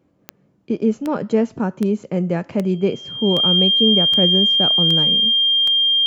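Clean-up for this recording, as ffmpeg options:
-af "adeclick=t=4,bandreject=f=3200:w=30"

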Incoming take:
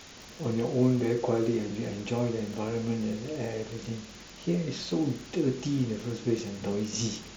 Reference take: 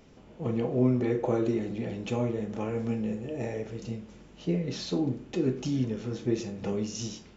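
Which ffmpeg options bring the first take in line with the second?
-af "adeclick=t=4,afwtdn=0.0056,asetnsamples=n=441:p=0,asendcmd='6.93 volume volume -5dB',volume=1"

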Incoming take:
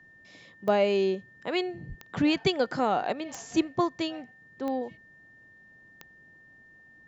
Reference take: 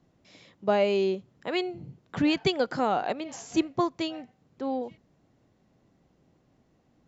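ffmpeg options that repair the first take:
-filter_complex "[0:a]adeclick=t=4,bandreject=f=1800:w=30,asplit=3[s0][s1][s2];[s0]afade=t=out:st=1.88:d=0.02[s3];[s1]highpass=f=140:w=0.5412,highpass=f=140:w=1.3066,afade=t=in:st=1.88:d=0.02,afade=t=out:st=2:d=0.02[s4];[s2]afade=t=in:st=2:d=0.02[s5];[s3][s4][s5]amix=inputs=3:normalize=0"

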